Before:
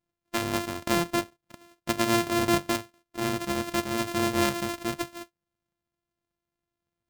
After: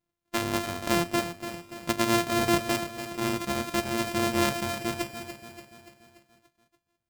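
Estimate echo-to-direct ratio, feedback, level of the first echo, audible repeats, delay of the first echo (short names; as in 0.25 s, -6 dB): -8.5 dB, 53%, -10.0 dB, 5, 0.289 s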